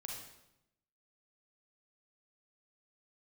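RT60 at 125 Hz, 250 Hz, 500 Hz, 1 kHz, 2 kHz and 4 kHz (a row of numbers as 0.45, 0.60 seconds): 1.1, 1.1, 0.90, 0.85, 0.75, 0.75 seconds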